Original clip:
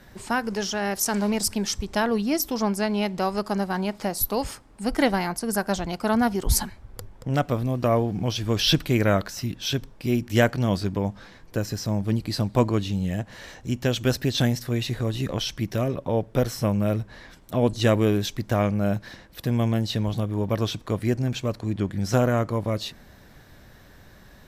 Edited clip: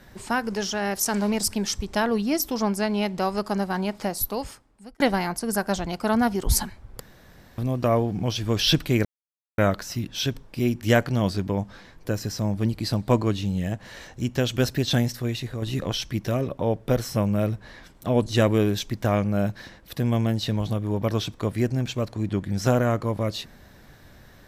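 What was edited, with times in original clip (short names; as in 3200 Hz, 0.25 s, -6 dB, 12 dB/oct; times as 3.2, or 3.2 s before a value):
4.05–5 fade out
7–7.58 room tone
9.05 insert silence 0.53 s
14.58–15.09 fade out, to -6.5 dB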